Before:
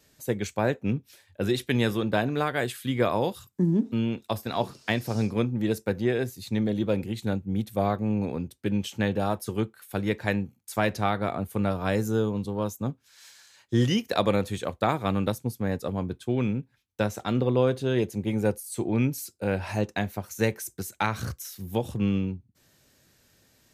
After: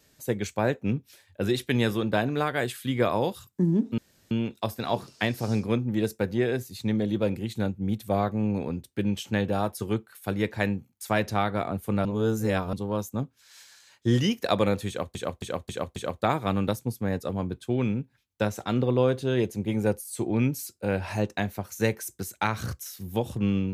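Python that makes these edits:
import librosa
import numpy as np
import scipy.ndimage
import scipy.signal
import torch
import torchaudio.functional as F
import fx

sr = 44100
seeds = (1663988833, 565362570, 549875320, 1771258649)

y = fx.edit(x, sr, fx.insert_room_tone(at_s=3.98, length_s=0.33),
    fx.reverse_span(start_s=11.72, length_s=0.68),
    fx.repeat(start_s=14.55, length_s=0.27, count=5), tone=tone)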